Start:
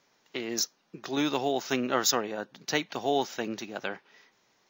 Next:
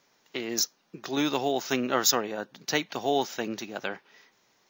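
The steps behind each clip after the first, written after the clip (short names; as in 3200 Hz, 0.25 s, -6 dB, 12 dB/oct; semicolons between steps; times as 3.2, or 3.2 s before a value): high shelf 9000 Hz +5.5 dB; gain +1 dB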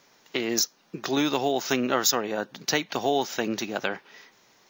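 compressor 2:1, threshold -31 dBFS, peak gain reduction 8 dB; gain +7 dB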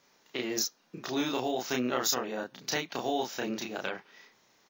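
doubler 32 ms -2 dB; gain -8 dB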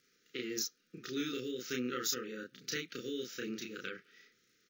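crackle 59/s -55 dBFS; brick-wall FIR band-stop 530–1200 Hz; gain -6 dB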